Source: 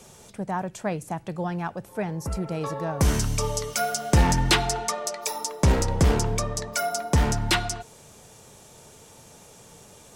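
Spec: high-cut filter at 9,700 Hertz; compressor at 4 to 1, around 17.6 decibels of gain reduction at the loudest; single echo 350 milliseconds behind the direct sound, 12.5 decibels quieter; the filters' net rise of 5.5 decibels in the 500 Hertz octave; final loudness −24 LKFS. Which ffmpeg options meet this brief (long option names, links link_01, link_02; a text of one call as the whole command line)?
ffmpeg -i in.wav -af "lowpass=9700,equalizer=frequency=500:width_type=o:gain=7,acompressor=threshold=-36dB:ratio=4,aecho=1:1:350:0.237,volume=14dB" out.wav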